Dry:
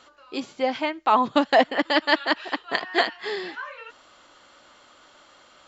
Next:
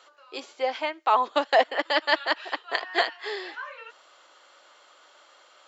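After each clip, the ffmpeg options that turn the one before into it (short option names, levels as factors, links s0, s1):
-af "highpass=f=390:w=0.5412,highpass=f=390:w=1.3066,volume=0.794"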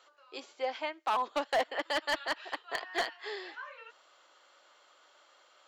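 -af "volume=7.08,asoftclip=hard,volume=0.141,volume=0.447"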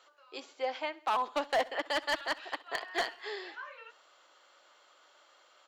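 -af "aecho=1:1:66|132|198|264:0.0891|0.0437|0.0214|0.0105"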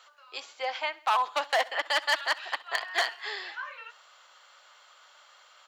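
-af "highpass=820,volume=2.24"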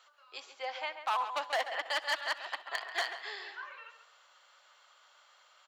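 -filter_complex "[0:a]asplit=2[s0][s1];[s1]adelay=137,lowpass=f=2400:p=1,volume=0.376,asplit=2[s2][s3];[s3]adelay=137,lowpass=f=2400:p=1,volume=0.34,asplit=2[s4][s5];[s5]adelay=137,lowpass=f=2400:p=1,volume=0.34,asplit=2[s6][s7];[s7]adelay=137,lowpass=f=2400:p=1,volume=0.34[s8];[s0][s2][s4][s6][s8]amix=inputs=5:normalize=0,volume=0.473"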